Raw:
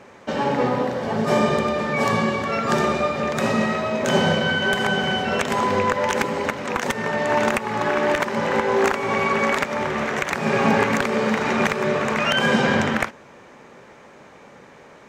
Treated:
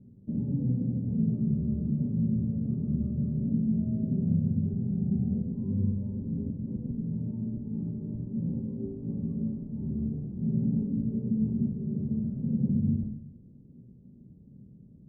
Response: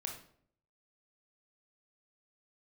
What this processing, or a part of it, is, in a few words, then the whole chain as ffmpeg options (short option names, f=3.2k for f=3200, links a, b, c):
club heard from the street: -filter_complex "[0:a]alimiter=limit=-14dB:level=0:latency=1:release=158,lowpass=f=210:w=0.5412,lowpass=f=210:w=1.3066[a];[1:a]atrim=start_sample=2205[b];[a][b]afir=irnorm=-1:irlink=0,volume=5.5dB"